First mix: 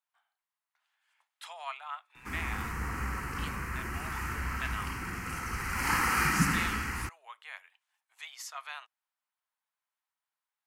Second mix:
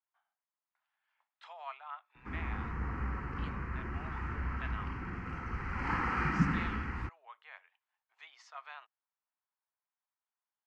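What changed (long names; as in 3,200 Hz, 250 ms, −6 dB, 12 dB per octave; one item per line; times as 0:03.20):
speech: add parametric band 5,700 Hz +6 dB 1.2 octaves
master: add head-to-tape spacing loss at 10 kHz 40 dB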